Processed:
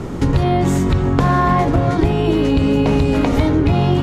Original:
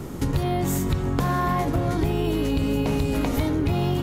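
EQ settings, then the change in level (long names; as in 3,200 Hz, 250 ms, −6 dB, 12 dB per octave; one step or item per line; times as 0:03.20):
low-pass filter 8,200 Hz 12 dB per octave
high-shelf EQ 4,400 Hz −8 dB
mains-hum notches 50/100/150/200/250/300/350 Hz
+9.0 dB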